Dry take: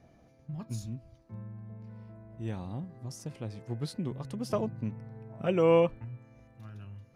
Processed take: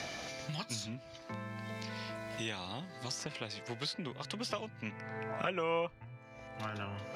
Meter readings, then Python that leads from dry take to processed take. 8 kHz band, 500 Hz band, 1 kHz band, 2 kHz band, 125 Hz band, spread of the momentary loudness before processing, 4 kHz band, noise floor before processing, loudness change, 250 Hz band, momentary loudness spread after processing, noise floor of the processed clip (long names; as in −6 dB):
+6.0 dB, −9.5 dB, −1.0 dB, +5.5 dB, −8.0 dB, 22 LU, +8.5 dB, −61 dBFS, −7.5 dB, −8.0 dB, 9 LU, −53 dBFS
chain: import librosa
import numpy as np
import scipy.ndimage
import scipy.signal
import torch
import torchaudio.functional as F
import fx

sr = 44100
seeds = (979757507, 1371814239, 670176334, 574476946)

y = fx.filter_sweep_bandpass(x, sr, from_hz=4100.0, to_hz=870.0, start_s=4.19, end_s=6.04, q=1.2)
y = fx.low_shelf(y, sr, hz=91.0, db=11.0)
y = fx.band_squash(y, sr, depth_pct=100)
y = y * librosa.db_to_amplitude(13.0)